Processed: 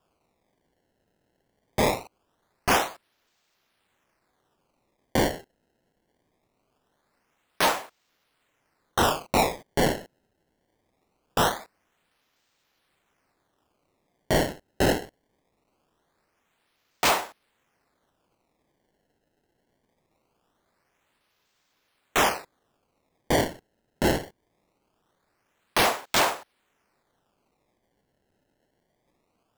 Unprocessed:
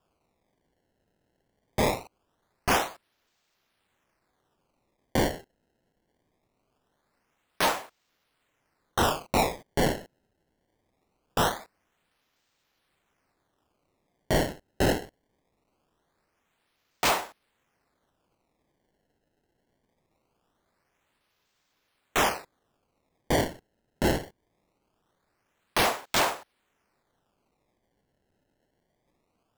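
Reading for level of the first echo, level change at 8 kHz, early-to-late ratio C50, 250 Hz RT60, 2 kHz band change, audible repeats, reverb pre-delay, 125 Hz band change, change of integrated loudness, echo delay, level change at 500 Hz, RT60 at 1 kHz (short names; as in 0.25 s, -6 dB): none, +2.5 dB, none, none, +2.5 dB, none, none, +0.5 dB, +2.0 dB, none, +2.0 dB, none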